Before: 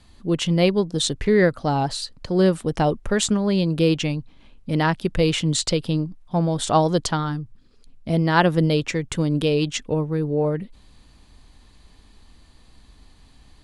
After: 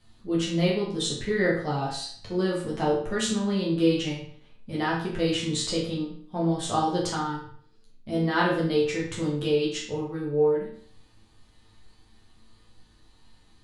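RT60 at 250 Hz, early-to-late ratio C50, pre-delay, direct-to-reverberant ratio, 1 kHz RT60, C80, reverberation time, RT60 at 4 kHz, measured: 0.55 s, 4.0 dB, 9 ms, -6.0 dB, 0.55 s, 7.5 dB, 0.55 s, 0.50 s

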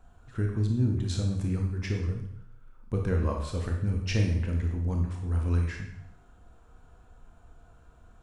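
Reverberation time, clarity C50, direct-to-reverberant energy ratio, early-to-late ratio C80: 0.75 s, 4.5 dB, 1.0 dB, 7.5 dB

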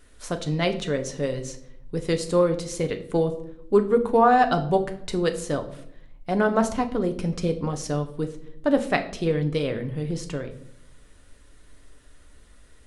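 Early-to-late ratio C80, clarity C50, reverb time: 16.0 dB, 13.0 dB, 0.70 s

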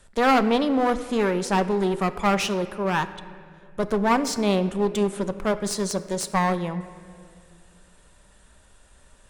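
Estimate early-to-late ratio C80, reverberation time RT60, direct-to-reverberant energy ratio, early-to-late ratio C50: 14.5 dB, 2.2 s, 10.0 dB, 13.5 dB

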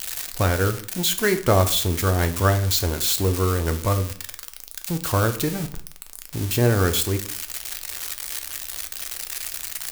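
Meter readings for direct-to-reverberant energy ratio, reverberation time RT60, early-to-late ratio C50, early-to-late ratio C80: 7.0 dB, 0.50 s, 13.5 dB, 18.0 dB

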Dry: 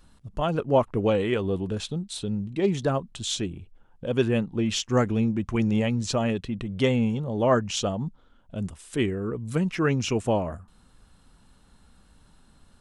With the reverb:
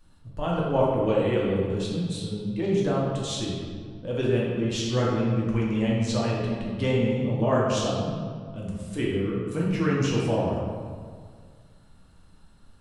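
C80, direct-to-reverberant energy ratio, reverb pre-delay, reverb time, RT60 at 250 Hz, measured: 1.5 dB, -5.0 dB, 3 ms, 1.9 s, 2.0 s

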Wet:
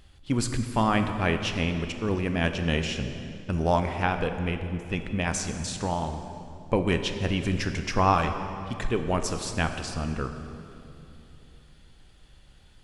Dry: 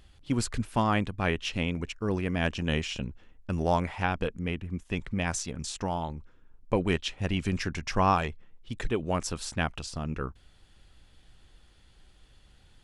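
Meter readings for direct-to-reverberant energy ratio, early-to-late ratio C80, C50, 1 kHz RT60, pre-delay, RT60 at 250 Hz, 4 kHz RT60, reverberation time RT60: 6.5 dB, 8.5 dB, 7.5 dB, 2.7 s, 13 ms, 3.5 s, 2.1 s, 2.8 s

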